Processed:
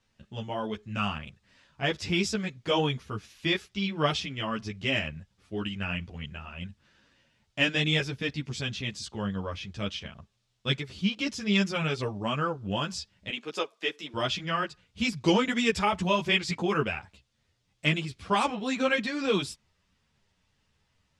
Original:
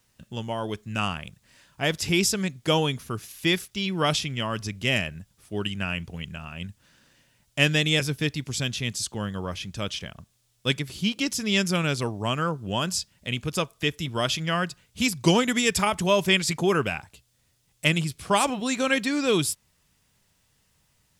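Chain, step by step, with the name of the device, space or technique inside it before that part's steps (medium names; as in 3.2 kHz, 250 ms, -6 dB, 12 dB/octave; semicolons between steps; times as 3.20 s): 13.29–14.14 s: high-pass 280 Hz 24 dB/octave; string-machine ensemble chorus (three-phase chorus; low-pass 4.6 kHz 12 dB/octave)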